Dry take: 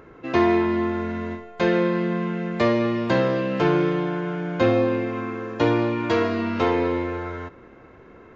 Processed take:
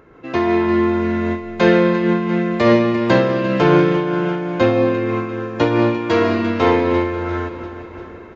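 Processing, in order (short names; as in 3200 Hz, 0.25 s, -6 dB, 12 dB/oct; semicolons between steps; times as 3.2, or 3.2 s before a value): AGC gain up to 9 dB; feedback echo 0.346 s, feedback 52%, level -13 dB; noise-modulated level, depth 60%; gain +3 dB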